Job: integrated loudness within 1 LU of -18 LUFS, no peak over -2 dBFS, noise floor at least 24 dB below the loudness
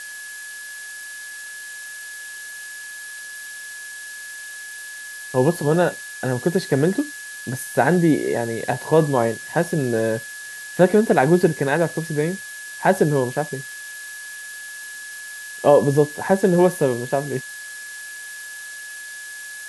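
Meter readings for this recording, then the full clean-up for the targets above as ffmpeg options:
steady tone 1700 Hz; tone level -34 dBFS; noise floor -36 dBFS; noise floor target -44 dBFS; loudness -20.0 LUFS; peak -1.5 dBFS; loudness target -18.0 LUFS
-> -af "bandreject=f=1.7k:w=30"
-af "afftdn=nr=8:nf=-36"
-af "volume=2dB,alimiter=limit=-2dB:level=0:latency=1"

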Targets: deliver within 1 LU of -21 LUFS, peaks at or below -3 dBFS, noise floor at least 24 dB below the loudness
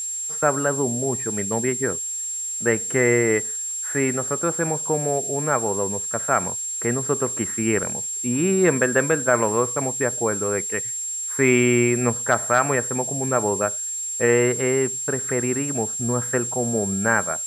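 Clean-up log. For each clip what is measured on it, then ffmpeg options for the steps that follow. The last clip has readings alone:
steady tone 7500 Hz; tone level -26 dBFS; noise floor -29 dBFS; noise floor target -46 dBFS; loudness -21.5 LUFS; peak -4.0 dBFS; loudness target -21.0 LUFS
-> -af "bandreject=f=7.5k:w=30"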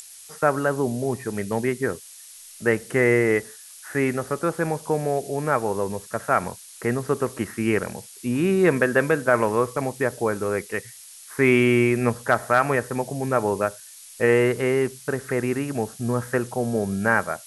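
steady tone none; noise floor -45 dBFS; noise floor target -48 dBFS
-> -af "afftdn=nr=6:nf=-45"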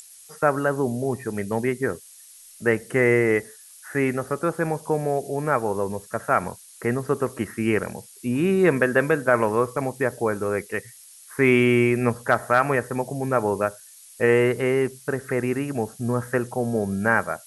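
noise floor -48 dBFS; loudness -23.5 LUFS; peak -4.5 dBFS; loudness target -21.0 LUFS
-> -af "volume=2.5dB,alimiter=limit=-3dB:level=0:latency=1"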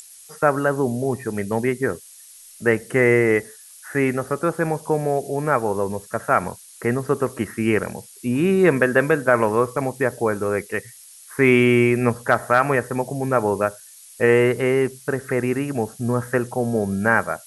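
loudness -21.0 LUFS; peak -3.0 dBFS; noise floor -45 dBFS

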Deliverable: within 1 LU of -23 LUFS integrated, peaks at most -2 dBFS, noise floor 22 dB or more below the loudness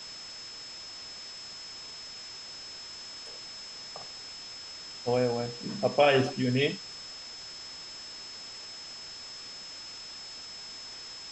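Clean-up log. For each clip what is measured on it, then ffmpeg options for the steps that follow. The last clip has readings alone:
steady tone 5200 Hz; tone level -42 dBFS; noise floor -44 dBFS; noise floor target -56 dBFS; loudness -34.0 LUFS; peak -10.5 dBFS; loudness target -23.0 LUFS
-> -af "bandreject=f=5.2k:w=30"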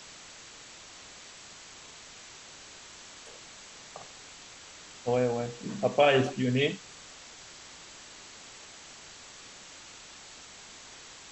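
steady tone none; noise floor -49 dBFS; noise floor target -50 dBFS
-> -af "afftdn=nr=6:nf=-49"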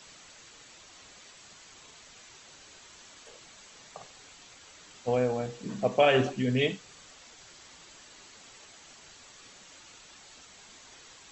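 noise floor -53 dBFS; loudness -28.0 LUFS; peak -10.5 dBFS; loudness target -23.0 LUFS
-> -af "volume=5dB"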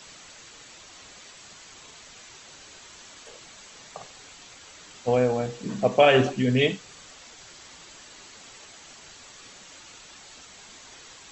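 loudness -23.0 LUFS; peak -5.5 dBFS; noise floor -48 dBFS

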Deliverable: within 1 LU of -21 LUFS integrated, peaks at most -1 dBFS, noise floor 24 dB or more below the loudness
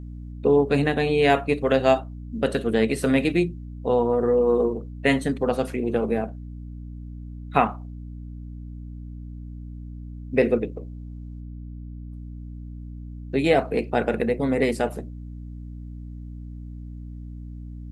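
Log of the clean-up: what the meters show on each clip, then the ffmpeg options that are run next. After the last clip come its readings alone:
hum 60 Hz; harmonics up to 300 Hz; hum level -34 dBFS; loudness -23.0 LUFS; peak -2.0 dBFS; loudness target -21.0 LUFS
-> -af "bandreject=f=60:t=h:w=6,bandreject=f=120:t=h:w=6,bandreject=f=180:t=h:w=6,bandreject=f=240:t=h:w=6,bandreject=f=300:t=h:w=6"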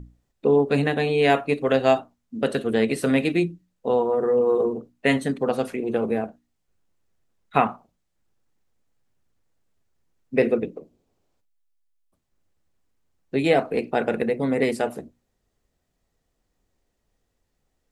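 hum none; loudness -23.0 LUFS; peak -2.0 dBFS; loudness target -21.0 LUFS
-> -af "volume=2dB,alimiter=limit=-1dB:level=0:latency=1"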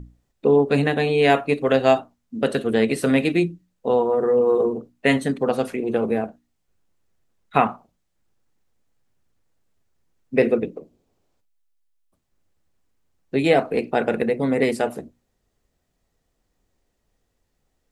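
loudness -21.0 LUFS; peak -1.0 dBFS; noise floor -73 dBFS

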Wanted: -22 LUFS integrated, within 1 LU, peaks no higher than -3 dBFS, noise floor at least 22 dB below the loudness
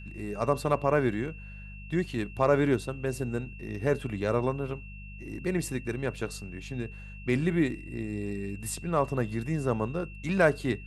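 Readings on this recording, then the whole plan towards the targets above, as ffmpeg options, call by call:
hum 50 Hz; harmonics up to 200 Hz; hum level -41 dBFS; steady tone 2700 Hz; tone level -48 dBFS; loudness -30.0 LUFS; peak -9.5 dBFS; loudness target -22.0 LUFS
-> -af "bandreject=f=50:t=h:w=4,bandreject=f=100:t=h:w=4,bandreject=f=150:t=h:w=4,bandreject=f=200:t=h:w=4"
-af "bandreject=f=2.7k:w=30"
-af "volume=8dB,alimiter=limit=-3dB:level=0:latency=1"

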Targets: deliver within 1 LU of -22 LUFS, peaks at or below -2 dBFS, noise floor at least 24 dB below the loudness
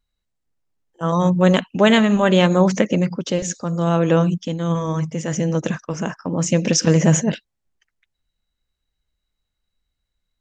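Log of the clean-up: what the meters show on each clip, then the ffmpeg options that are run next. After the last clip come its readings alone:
loudness -18.5 LUFS; peak -2.5 dBFS; loudness target -22.0 LUFS
-> -af "volume=-3.5dB"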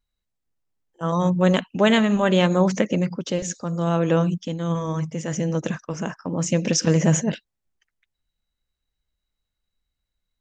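loudness -22.0 LUFS; peak -6.0 dBFS; noise floor -82 dBFS

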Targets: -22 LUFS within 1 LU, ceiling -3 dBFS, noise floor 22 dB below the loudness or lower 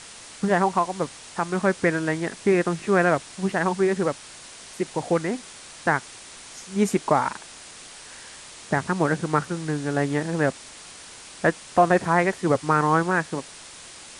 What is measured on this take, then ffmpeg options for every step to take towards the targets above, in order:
noise floor -44 dBFS; noise floor target -46 dBFS; loudness -24.0 LUFS; peak -5.5 dBFS; loudness target -22.0 LUFS
-> -af "afftdn=nr=6:nf=-44"
-af "volume=2dB"

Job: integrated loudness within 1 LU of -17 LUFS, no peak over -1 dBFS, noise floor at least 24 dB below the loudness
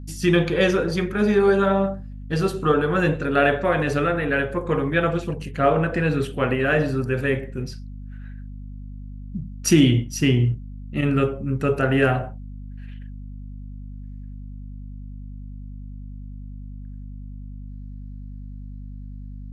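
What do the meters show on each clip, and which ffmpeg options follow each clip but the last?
hum 50 Hz; harmonics up to 250 Hz; hum level -33 dBFS; loudness -21.5 LUFS; peak -4.0 dBFS; loudness target -17.0 LUFS
-> -af "bandreject=f=50:t=h:w=4,bandreject=f=100:t=h:w=4,bandreject=f=150:t=h:w=4,bandreject=f=200:t=h:w=4,bandreject=f=250:t=h:w=4"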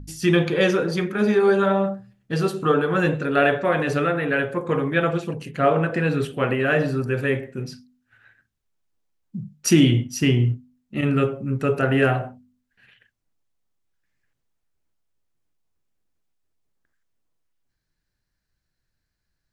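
hum none; loudness -21.5 LUFS; peak -3.5 dBFS; loudness target -17.0 LUFS
-> -af "volume=4.5dB,alimiter=limit=-1dB:level=0:latency=1"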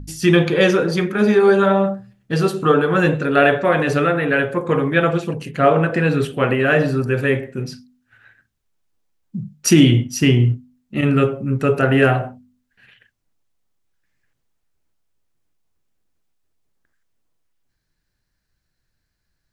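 loudness -17.0 LUFS; peak -1.0 dBFS; noise floor -74 dBFS

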